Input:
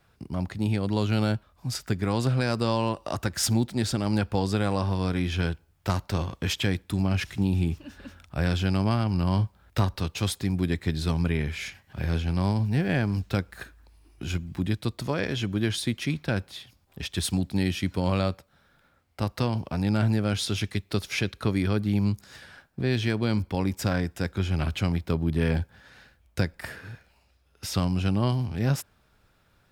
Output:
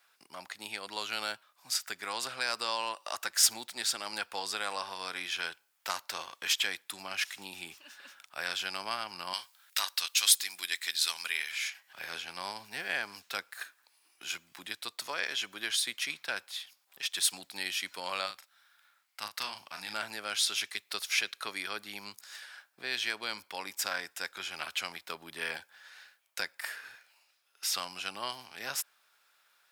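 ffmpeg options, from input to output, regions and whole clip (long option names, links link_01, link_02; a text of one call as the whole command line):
ffmpeg -i in.wav -filter_complex "[0:a]asettb=1/sr,asplit=3[link_01][link_02][link_03];[link_01]atrim=end=9.334[link_04];[link_02]atrim=start=9.33:end=11.52,asetpts=PTS-STARTPTS,afade=type=in:duration=0.004:curve=qsin,afade=type=out:start_time=2.186:duration=0.004:curve=qsin,highpass=frequency=260:poles=1,tiltshelf=frequency=1400:gain=-9[link_05];[link_03]atrim=start=11.516[link_06];[link_04][link_05]acrossfade=duration=0.004:curve1=hsin:curve2=qsin[link_07];[link_07][link_06]acrossfade=duration=0.004:curve1=qsin:curve2=hsin,asettb=1/sr,asplit=3[link_08][link_09][link_10];[link_08]atrim=end=18.264[link_11];[link_09]atrim=start=18.26:end=19.94,asetpts=PTS-STARTPTS,afade=type=in:duration=0.004:curve=qsin,afade=type=out:start_time=1.676:duration=0.004:curve=qsin,equalizer=frequency=490:width=0.98:gain=-9,asplit=2[link_12][link_13];[link_13]adelay=38,volume=-7dB[link_14];[link_12][link_14]amix=inputs=2:normalize=0,atrim=end_sample=74088[link_15];[link_10]atrim=start=19.936[link_16];[link_11][link_15]acrossfade=duration=0.004:curve1=hsin:curve2=qsin[link_17];[link_17][link_16]acrossfade=duration=0.004:curve1=qsin:curve2=hsin,highpass=1100,highshelf=frequency=5100:gain=5" out.wav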